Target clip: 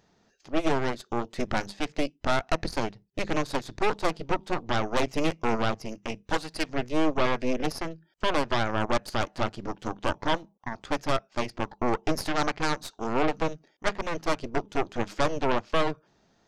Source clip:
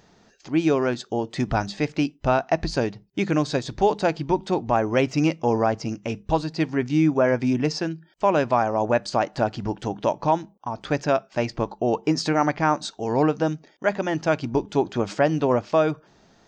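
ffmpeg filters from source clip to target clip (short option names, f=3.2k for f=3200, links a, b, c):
-filter_complex "[0:a]asettb=1/sr,asplit=3[a][b][c];[a]atrim=end=6.234[d];[b]atrim=start=6.23:end=6.69,asetpts=PTS-STARTPTS,afade=t=in:d=0.004:c=qsin,afade=t=out:st=0.456:d=0.004:c=qsin,tiltshelf=f=650:g=-6[e];[c]atrim=start=6.686[f];[d][e]acrossfade=d=0.004:c1=hsin:c2=qsin[g];[g][f]acrossfade=d=0.004:c1=qsin:c2=hsin,aeval=exprs='0.422*(cos(1*acos(clip(val(0)/0.422,-1,1)))-cos(1*PI/2))+0.188*(cos(6*acos(clip(val(0)/0.422,-1,1)))-cos(6*PI/2))':c=same,volume=-9dB"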